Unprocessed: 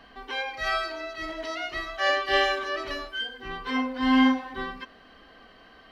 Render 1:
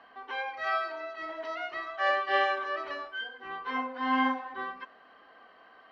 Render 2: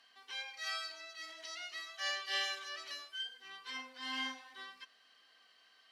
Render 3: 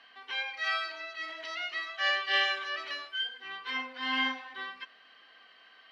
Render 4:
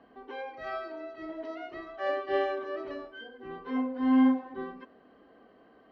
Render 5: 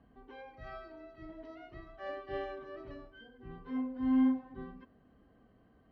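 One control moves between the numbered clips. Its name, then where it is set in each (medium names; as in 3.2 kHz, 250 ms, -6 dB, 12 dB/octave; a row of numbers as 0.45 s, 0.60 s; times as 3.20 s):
band-pass filter, frequency: 1 kHz, 7.8 kHz, 2.7 kHz, 360 Hz, 110 Hz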